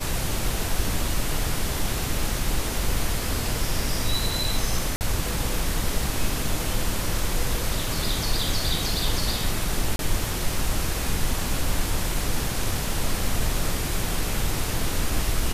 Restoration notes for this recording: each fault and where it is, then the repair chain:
4.96–5.01 gap 49 ms
9.96–9.99 gap 32 ms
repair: interpolate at 4.96, 49 ms; interpolate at 9.96, 32 ms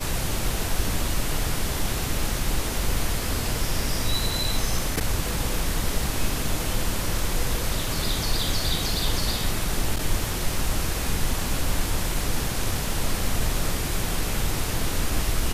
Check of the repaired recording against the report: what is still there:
none

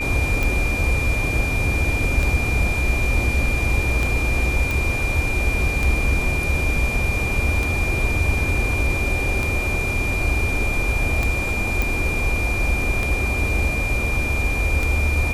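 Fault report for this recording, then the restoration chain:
tick 33 1/3 rpm
tone 2400 Hz -24 dBFS
4.71 pop
11.82 pop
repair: de-click; notch 2400 Hz, Q 30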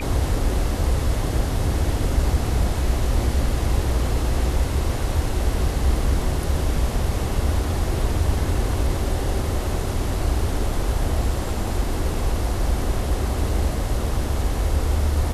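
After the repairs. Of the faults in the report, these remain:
none

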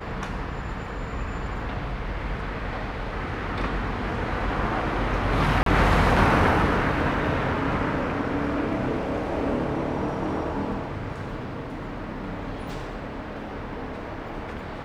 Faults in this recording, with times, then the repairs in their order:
5.63–5.66 gap 33 ms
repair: interpolate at 5.63, 33 ms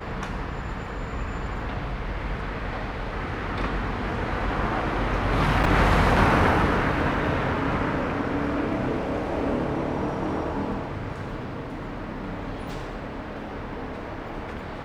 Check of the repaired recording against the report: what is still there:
none

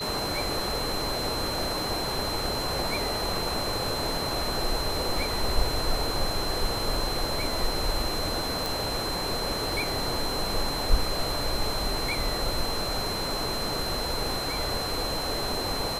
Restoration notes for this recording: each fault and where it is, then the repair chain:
tone 4100 Hz -32 dBFS
8.66 pop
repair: de-click; notch 4100 Hz, Q 30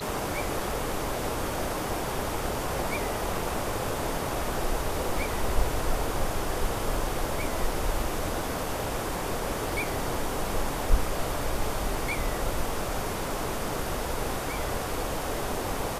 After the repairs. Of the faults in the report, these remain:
none

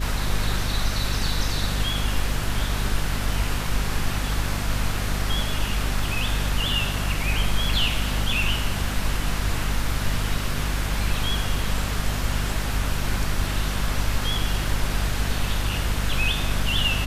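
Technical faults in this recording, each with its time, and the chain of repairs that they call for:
hum 50 Hz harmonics 5 -27 dBFS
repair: de-hum 50 Hz, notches 5

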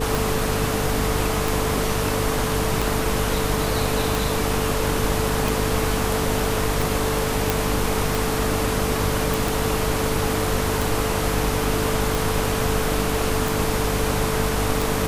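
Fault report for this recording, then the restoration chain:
hum 50 Hz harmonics 6 -27 dBFS
tick 45 rpm
tone 440 Hz -27 dBFS
7.5 pop
9.34 pop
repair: de-click; de-hum 50 Hz, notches 6; notch 440 Hz, Q 30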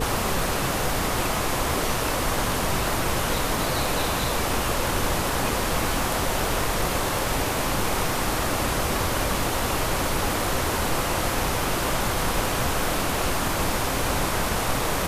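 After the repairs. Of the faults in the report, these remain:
none

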